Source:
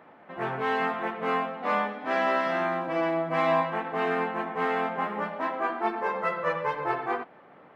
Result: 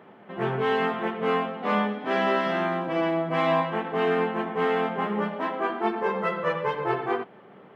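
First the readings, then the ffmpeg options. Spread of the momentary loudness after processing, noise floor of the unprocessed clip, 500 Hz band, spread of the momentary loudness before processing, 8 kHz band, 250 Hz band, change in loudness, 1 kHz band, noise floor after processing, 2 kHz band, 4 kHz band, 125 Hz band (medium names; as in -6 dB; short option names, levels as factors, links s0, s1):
5 LU, -53 dBFS, +3.0 dB, 6 LU, no reading, +5.0 dB, +2.0 dB, +0.5 dB, -50 dBFS, +0.5 dB, +5.0 dB, +6.5 dB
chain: -af "equalizer=f=125:t=o:w=0.33:g=9,equalizer=f=200:t=o:w=0.33:g=11,equalizer=f=400:t=o:w=0.33:g=10,equalizer=f=3150:t=o:w=0.33:g=7"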